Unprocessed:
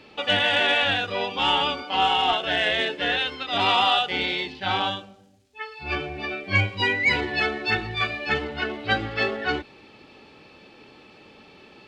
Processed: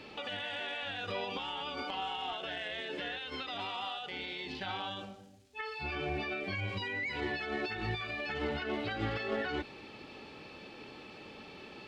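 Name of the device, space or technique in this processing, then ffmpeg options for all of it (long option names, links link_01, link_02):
de-esser from a sidechain: -filter_complex "[0:a]asplit=2[link_01][link_02];[link_02]highpass=frequency=6200:poles=1,apad=whole_len=523541[link_03];[link_01][link_03]sidechaincompress=threshold=-43dB:ratio=10:attack=0.62:release=80"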